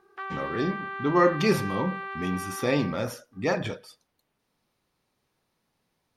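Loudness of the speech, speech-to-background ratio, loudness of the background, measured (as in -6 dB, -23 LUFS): -27.5 LUFS, 8.0 dB, -35.5 LUFS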